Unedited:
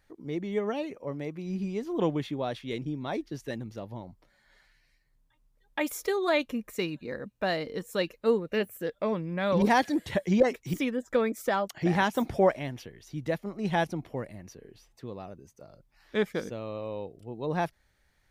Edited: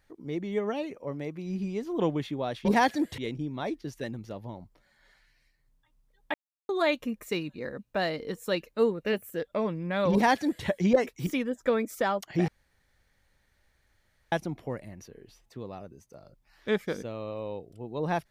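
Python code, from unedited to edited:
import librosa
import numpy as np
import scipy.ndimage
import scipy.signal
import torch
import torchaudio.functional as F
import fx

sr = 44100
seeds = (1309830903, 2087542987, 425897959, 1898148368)

y = fx.edit(x, sr, fx.silence(start_s=5.81, length_s=0.35),
    fx.duplicate(start_s=9.59, length_s=0.53, to_s=2.65),
    fx.room_tone_fill(start_s=11.95, length_s=1.84), tone=tone)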